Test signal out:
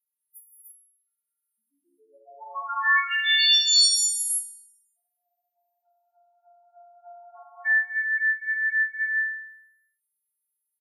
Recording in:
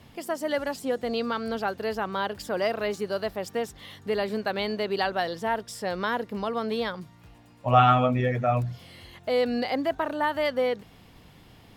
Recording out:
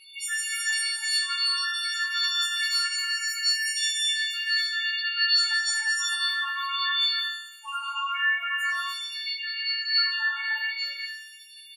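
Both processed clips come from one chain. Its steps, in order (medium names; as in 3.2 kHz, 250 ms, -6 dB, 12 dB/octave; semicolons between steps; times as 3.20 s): partials quantised in pitch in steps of 4 st; high-pass 1.3 kHz 24 dB/octave; reverb removal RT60 1 s; compression 6:1, threshold -35 dBFS; loudest bins only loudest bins 4; on a send: flutter echo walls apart 3.6 m, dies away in 0.8 s; on the sum: gated-style reverb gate 390 ms rising, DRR -4 dB; resampled via 32 kHz; trim +6.5 dB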